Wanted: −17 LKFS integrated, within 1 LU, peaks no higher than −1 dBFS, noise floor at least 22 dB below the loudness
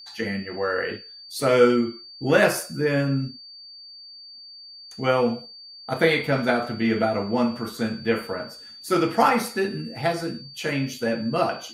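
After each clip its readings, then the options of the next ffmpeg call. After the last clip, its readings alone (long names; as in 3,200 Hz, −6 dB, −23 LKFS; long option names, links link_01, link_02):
interfering tone 4,600 Hz; level of the tone −41 dBFS; integrated loudness −24.0 LKFS; sample peak −5.0 dBFS; target loudness −17.0 LKFS
→ -af "bandreject=frequency=4600:width=30"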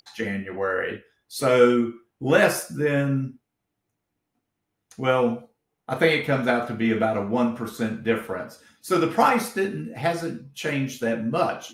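interfering tone none found; integrated loudness −24.0 LKFS; sample peak −5.0 dBFS; target loudness −17.0 LKFS
→ -af "volume=7dB,alimiter=limit=-1dB:level=0:latency=1"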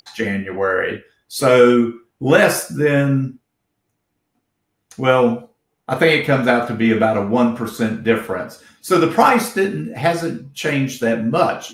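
integrated loudness −17.0 LKFS; sample peak −1.0 dBFS; background noise floor −74 dBFS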